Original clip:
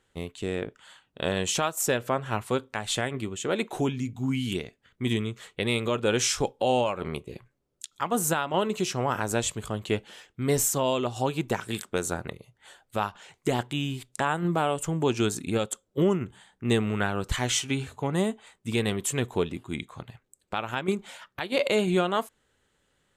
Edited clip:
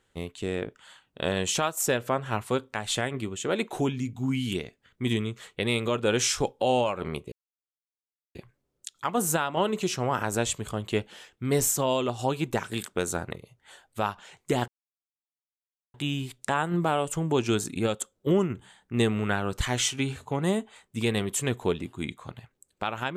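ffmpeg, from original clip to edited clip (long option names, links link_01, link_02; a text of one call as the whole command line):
ffmpeg -i in.wav -filter_complex "[0:a]asplit=3[link_01][link_02][link_03];[link_01]atrim=end=7.32,asetpts=PTS-STARTPTS,afade=type=out:start_time=7.316:duration=0.004:curve=hsin,apad=pad_dur=1.03[link_04];[link_02]atrim=start=7.32:end=13.65,asetpts=PTS-STARTPTS,afade=type=in:duration=0.004:curve=hsin,afade=type=out:start_time=6.326:duration=0.004:curve=hsin,apad=pad_dur=1.26[link_05];[link_03]atrim=start=13.65,asetpts=PTS-STARTPTS,afade=type=in:duration=0.004:curve=hsin[link_06];[link_04][link_05][link_06]concat=n=3:v=0:a=1" out.wav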